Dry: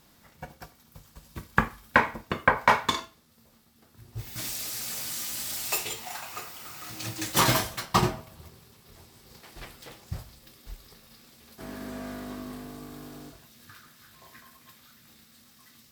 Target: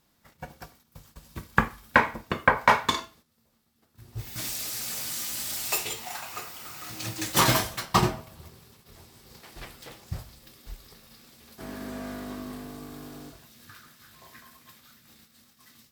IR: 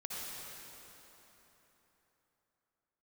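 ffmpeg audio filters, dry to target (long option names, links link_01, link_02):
-af "agate=range=-10dB:threshold=-56dB:ratio=16:detection=peak,volume=1dB"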